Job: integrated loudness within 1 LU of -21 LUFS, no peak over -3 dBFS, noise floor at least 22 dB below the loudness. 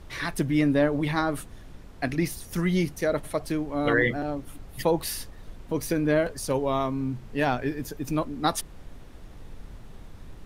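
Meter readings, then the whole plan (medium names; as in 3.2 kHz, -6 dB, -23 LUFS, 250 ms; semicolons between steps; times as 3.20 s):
noise floor -46 dBFS; noise floor target -49 dBFS; loudness -27.0 LUFS; peak level -9.5 dBFS; loudness target -21.0 LUFS
-> noise print and reduce 6 dB; trim +6 dB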